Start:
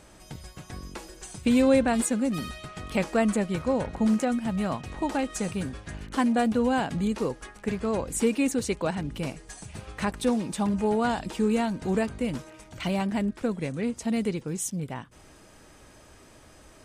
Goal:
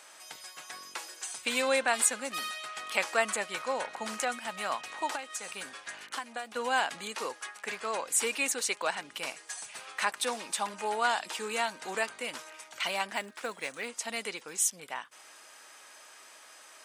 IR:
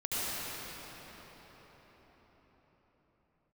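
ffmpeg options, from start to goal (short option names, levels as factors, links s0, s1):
-filter_complex "[0:a]highpass=1000,asettb=1/sr,asplit=3[s0][s1][s2];[s0]atrim=end=5.154[s3];[s1]atrim=start=5.15:end=6.56,asetpts=PTS-STARTPTS,afade=t=in:d=0.004:c=qsin,afade=t=out:st=1.406:d=0.004:c=qsin,acompressor=threshold=0.0112:ratio=8[s4];[s2]atrim=start=6.556[s5];[s3][s4]acrossfade=d=0.004:c1=hsin:c2=qsin[s6];[s6][s5]acrossfade=d=0.004:c1=qsin:c2=hsin,asettb=1/sr,asplit=3[s7][s8][s9];[s7]atrim=end=13.154[s10];[s8]atrim=start=13.15:end=13.88,asetpts=PTS-STARTPTS,afade=t=in:d=0.004:c=qsin,afade=t=out:st=0.726:d=0.004:c=qsin,acrusher=bits=6:mode=log:mix=0:aa=0.000001[s11];[s9]atrim=start=13.876[s12];[s10][s11]acrossfade=d=0.004:c1=hsin:c2=qsin[s13];[s13][s12]acrossfade=d=0.004:c1=qsin:c2=hsin,volume=1.68"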